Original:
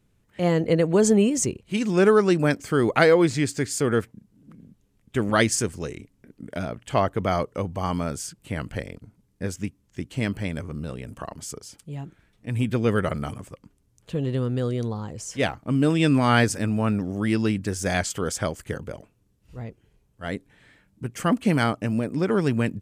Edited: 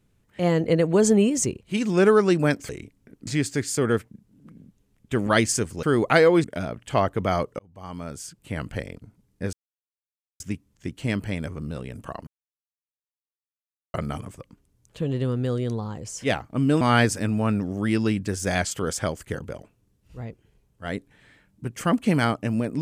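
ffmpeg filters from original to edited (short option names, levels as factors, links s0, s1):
-filter_complex "[0:a]asplit=10[s0][s1][s2][s3][s4][s5][s6][s7][s8][s9];[s0]atrim=end=2.692[s10];[s1]atrim=start=5.858:end=6.442[s11];[s2]atrim=start=3.298:end=5.862[s12];[s3]atrim=start=2.688:end=3.302[s13];[s4]atrim=start=6.438:end=7.59,asetpts=PTS-STARTPTS,afade=t=out:st=1.148:d=0.004:c=hsin[s14];[s5]atrim=start=7.59:end=9.53,asetpts=PTS-STARTPTS,afade=t=in:d=1.05,afade=t=out:st=1.936:d=0.004:c=hsin,apad=pad_dur=0.87[s15];[s6]atrim=start=9.53:end=11.4,asetpts=PTS-STARTPTS,afade=t=in:d=0.004:c=hsin,afade=t=out:st=1.866:d=0.004:c=hsin[s16];[s7]atrim=start=11.4:end=13.07,asetpts=PTS-STARTPTS,volume=0[s17];[s8]atrim=start=13.07:end=15.942,asetpts=PTS-STARTPTS,afade=t=in:d=0.004:c=hsin[s18];[s9]atrim=start=16.198[s19];[s10][s11]acrossfade=d=0.004:c1=hsin:c2=hsin[s20];[s20][s12]acrossfade=d=0.004:c1=hsin:c2=hsin[s21];[s21][s13]acrossfade=d=0.004:c1=hsin:c2=hsin[s22];[s14][s15][s16][s17][s18]concat=n=5:v=0:a=1[s23];[s22][s23]acrossfade=d=0.004:c1=hsin:c2=hsin[s24];[s24][s19]acrossfade=d=0.004:c1=hsin:c2=hsin"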